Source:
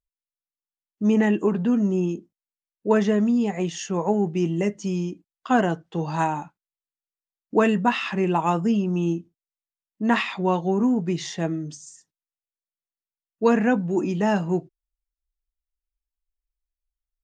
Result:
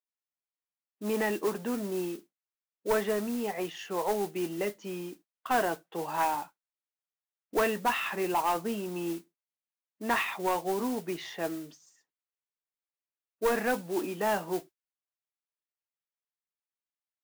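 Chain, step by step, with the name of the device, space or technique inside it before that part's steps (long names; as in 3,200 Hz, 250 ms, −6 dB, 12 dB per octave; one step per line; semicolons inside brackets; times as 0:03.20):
carbon microphone (band-pass filter 440–2,800 Hz; soft clipping −18.5 dBFS, distortion −13 dB; noise that follows the level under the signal 15 dB)
level −1.5 dB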